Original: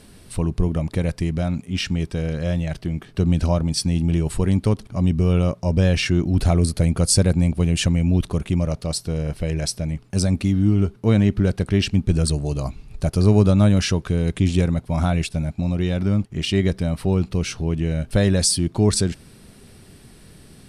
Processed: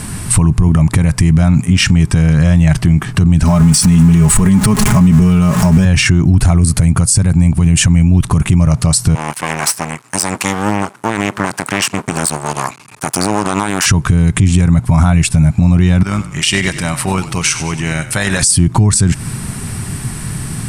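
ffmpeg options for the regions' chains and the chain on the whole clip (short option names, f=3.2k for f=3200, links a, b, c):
-filter_complex "[0:a]asettb=1/sr,asplit=3[a][b][c];[a]atrim=end=3.434[d];[b]atrim=start=3.43:end=5.85,asetpts=PTS-STARTPTS,afade=t=in:d=0.004:c=qsin,afade=t=out:st=2.416:d=0.004:c=qsin,aeval=exprs='val(0)+0.5*0.0335*sgn(val(0))':c=same,aecho=1:1:4.8:0.69,atrim=end_sample=106722,acompressor=threshold=-22dB:ratio=2:attack=3.2:release=140:knee=1:detection=peak[e];[c]atrim=start=5.846[f];[d][e]acrossfade=d=0.004:c1=hsin:c2=qsin[g];[g][f]acrossfade=d=0.004:c1=qsin:c2=hsin,asettb=1/sr,asplit=3[h][i][j];[h]atrim=end=9.154[k];[i]atrim=start=9.15:end=13.86,asetpts=PTS-STARTPTS,afade=t=in:d=0.004:c=qsin,afade=t=out:st=4.706:d=0.004:c=qsin,aeval=exprs='max(val(0),0)':c=same,highpass=510[l];[j]atrim=start=13.856[m];[k][l]acrossfade=d=0.004:c1=hsin:c2=qsin[n];[n][m]acrossfade=d=0.004:c1=qsin:c2=hsin,asettb=1/sr,asplit=3[o][p][q];[o]atrim=end=16.034[r];[p]atrim=start=16.03:end=18.43,asetpts=PTS-STARTPTS,afade=t=in:d=0.004:c=qsin,afade=t=out:st=2.396:d=0.004:c=qsin,highpass=f=1.3k:p=1,tremolo=f=160:d=0.519,asplit=6[s][t][u][v][w][x];[t]adelay=97,afreqshift=-31,volume=-14dB[y];[u]adelay=194,afreqshift=-62,volume=-20dB[z];[v]adelay=291,afreqshift=-93,volume=-26dB[aa];[w]adelay=388,afreqshift=-124,volume=-32.1dB[ab];[x]adelay=485,afreqshift=-155,volume=-38.1dB[ac];[s][y][z][aa][ab][ac]amix=inputs=6:normalize=0,atrim=end_sample=105840[ad];[q]atrim=start=18.426[ae];[r][ad]acrossfade=d=0.004:c1=hsin:c2=qsin[af];[af][ae]acrossfade=d=0.004:c1=qsin:c2=hsin,equalizer=f=125:t=o:w=1:g=10,equalizer=f=500:t=o:w=1:g=-9,equalizer=f=1k:t=o:w=1:g=7,equalizer=f=2k:t=o:w=1:g=3,equalizer=f=4k:t=o:w=1:g=-6,equalizer=f=8k:t=o:w=1:g=9,acompressor=threshold=-21dB:ratio=10,alimiter=level_in=20.5dB:limit=-1dB:release=50:level=0:latency=1,volume=-1dB"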